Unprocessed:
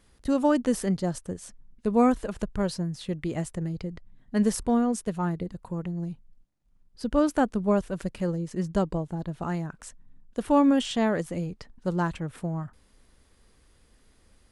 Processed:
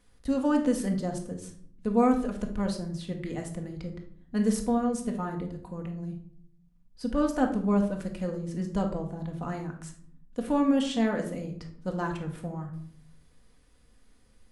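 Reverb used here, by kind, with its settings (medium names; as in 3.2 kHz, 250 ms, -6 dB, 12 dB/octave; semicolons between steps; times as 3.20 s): simulated room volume 880 m³, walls furnished, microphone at 1.9 m; trim -5 dB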